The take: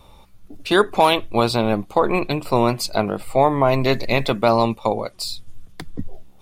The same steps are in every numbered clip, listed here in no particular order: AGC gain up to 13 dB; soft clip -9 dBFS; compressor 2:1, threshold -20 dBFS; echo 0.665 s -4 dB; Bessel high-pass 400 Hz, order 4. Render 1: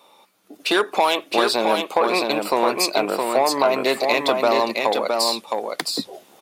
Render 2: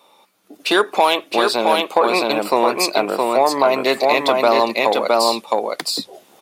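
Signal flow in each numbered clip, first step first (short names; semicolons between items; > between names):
soft clip > AGC > Bessel high-pass > compressor > echo; echo > compressor > soft clip > Bessel high-pass > AGC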